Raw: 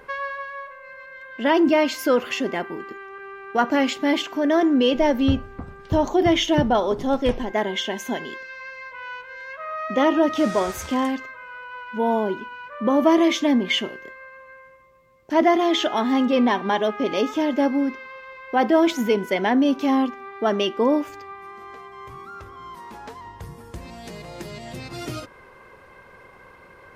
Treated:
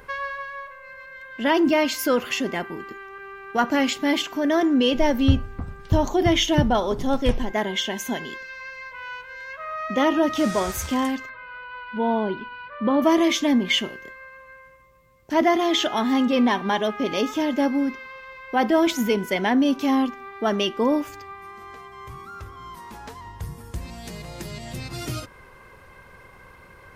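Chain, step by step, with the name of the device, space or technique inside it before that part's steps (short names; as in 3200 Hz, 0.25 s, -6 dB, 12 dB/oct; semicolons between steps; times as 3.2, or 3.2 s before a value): smiley-face EQ (low shelf 150 Hz +8 dB; bell 430 Hz -3.5 dB 2.1 oct; high shelf 6300 Hz +7.5 dB); 11.29–13.02 steep low-pass 4800 Hz 72 dB/oct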